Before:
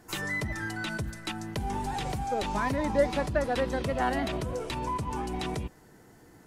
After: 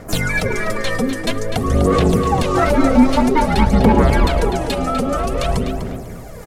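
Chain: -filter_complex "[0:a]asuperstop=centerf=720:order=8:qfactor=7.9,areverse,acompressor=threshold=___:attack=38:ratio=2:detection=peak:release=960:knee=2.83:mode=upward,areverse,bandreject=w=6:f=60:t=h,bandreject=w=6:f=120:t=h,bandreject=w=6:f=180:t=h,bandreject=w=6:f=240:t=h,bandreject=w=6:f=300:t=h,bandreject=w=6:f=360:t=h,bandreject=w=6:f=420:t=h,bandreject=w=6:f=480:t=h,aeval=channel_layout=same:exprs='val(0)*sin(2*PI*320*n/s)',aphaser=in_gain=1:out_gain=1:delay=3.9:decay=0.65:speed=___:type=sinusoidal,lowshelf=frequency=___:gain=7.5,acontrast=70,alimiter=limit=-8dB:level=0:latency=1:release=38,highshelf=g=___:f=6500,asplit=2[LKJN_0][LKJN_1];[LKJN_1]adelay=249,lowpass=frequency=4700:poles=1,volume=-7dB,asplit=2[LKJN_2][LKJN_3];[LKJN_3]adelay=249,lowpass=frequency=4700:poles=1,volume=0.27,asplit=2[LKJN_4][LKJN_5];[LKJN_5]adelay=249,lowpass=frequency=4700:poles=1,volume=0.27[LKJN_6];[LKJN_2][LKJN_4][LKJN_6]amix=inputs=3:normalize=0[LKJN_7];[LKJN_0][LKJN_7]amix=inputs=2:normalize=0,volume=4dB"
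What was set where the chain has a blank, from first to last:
-41dB, 0.51, 480, 4.5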